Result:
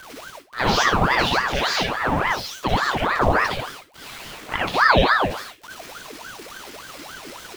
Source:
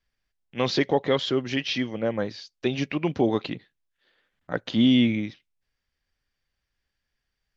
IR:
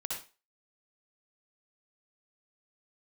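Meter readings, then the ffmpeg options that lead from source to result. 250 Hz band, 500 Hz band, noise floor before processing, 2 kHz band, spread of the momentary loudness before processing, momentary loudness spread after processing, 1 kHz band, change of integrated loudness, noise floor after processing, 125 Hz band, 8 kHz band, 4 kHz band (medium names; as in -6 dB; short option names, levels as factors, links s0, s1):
-4.5 dB, +2.0 dB, -82 dBFS, +14.0 dB, 14 LU, 20 LU, +15.5 dB, +5.0 dB, -44 dBFS, +4.0 dB, no reading, +5.5 dB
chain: -filter_complex "[0:a]aeval=exprs='val(0)+0.5*0.015*sgn(val(0))':c=same[s0];[1:a]atrim=start_sample=2205[s1];[s0][s1]afir=irnorm=-1:irlink=0,aeval=exprs='val(0)*sin(2*PI*920*n/s+920*0.7/3.5*sin(2*PI*3.5*n/s))':c=same,volume=2.11"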